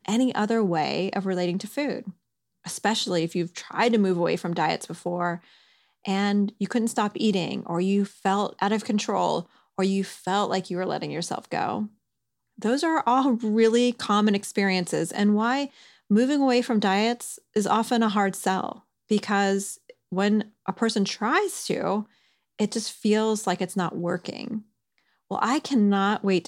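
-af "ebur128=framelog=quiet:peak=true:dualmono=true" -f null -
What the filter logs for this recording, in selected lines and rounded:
Integrated loudness:
  I:         -22.0 LUFS
  Threshold: -32.4 LUFS
Loudness range:
  LRA:         4.2 LU
  Threshold: -42.5 LUFS
  LRA low:   -24.5 LUFS
  LRA high:  -20.3 LUFS
True peak:
  Peak:       -8.8 dBFS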